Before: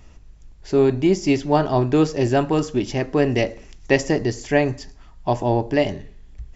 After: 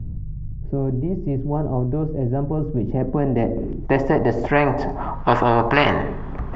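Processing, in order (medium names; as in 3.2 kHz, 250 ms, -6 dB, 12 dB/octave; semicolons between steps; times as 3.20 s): low-pass sweep 120 Hz -> 1.1 kHz, 2.49–5.32 s; spectrum-flattening compressor 4:1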